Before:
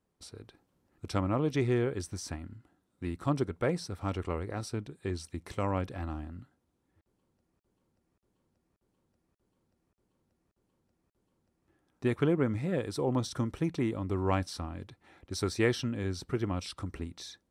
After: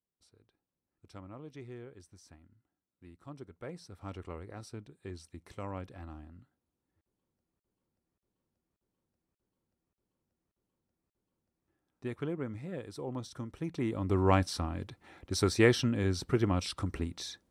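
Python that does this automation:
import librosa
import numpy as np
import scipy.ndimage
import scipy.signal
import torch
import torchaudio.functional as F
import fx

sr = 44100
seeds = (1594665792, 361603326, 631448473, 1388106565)

y = fx.gain(x, sr, db=fx.line((3.29, -18.0), (4.11, -9.0), (13.5, -9.0), (14.15, 3.5)))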